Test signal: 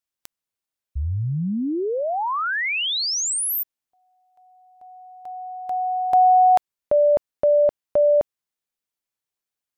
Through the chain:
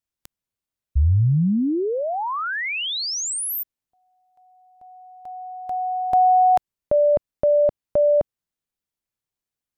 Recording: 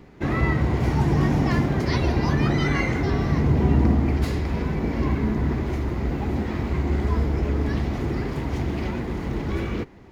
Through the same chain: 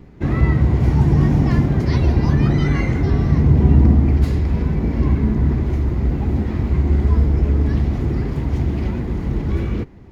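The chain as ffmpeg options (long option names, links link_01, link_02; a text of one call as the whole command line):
ffmpeg -i in.wav -af "lowshelf=frequency=270:gain=11.5,volume=-2.5dB" out.wav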